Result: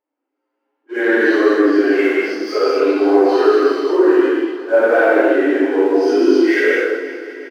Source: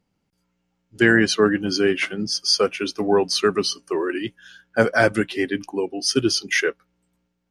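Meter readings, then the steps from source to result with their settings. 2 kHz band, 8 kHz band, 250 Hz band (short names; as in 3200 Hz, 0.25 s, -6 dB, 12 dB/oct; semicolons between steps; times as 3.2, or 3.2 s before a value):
+4.0 dB, under -10 dB, +8.0 dB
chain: phase scrambler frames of 0.2 s; LPF 1600 Hz 12 dB/oct; dynamic EQ 540 Hz, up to +5 dB, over -32 dBFS, Q 1.3; sample leveller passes 1; AGC gain up to 10 dB; limiter -6 dBFS, peak gain reduction 5 dB; flange 1 Hz, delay 5.2 ms, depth 7 ms, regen -41%; brick-wall FIR high-pass 250 Hz; on a send: feedback echo 0.362 s, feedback 55%, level -14 dB; on the sum: non-linear reverb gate 0.28 s flat, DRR -4 dB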